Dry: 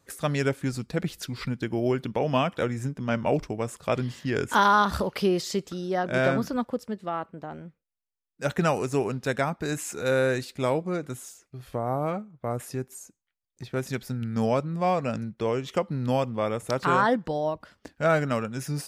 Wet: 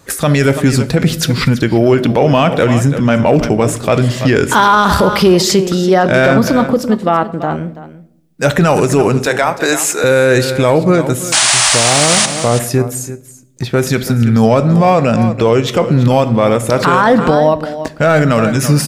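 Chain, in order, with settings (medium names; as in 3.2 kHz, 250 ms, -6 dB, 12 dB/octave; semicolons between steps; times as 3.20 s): 9.26–10.04 s: high-pass 430 Hz 12 dB/octave; 11.32–12.26 s: painted sound noise 580–10000 Hz -26 dBFS; in parallel at -5 dB: hard clipper -19.5 dBFS, distortion -13 dB; on the sum: delay 333 ms -15.5 dB; on a send at -14 dB: reverberation RT60 0.80 s, pre-delay 6 ms; on the sum: loudness maximiser +17 dB; trim -1 dB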